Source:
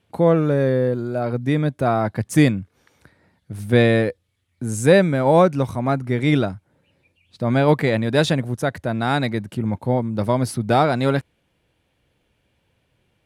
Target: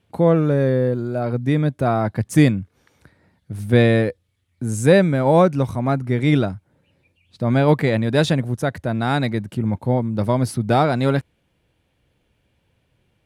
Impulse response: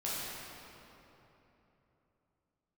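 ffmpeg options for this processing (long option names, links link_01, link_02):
-af "lowshelf=frequency=250:gain=4,volume=-1dB"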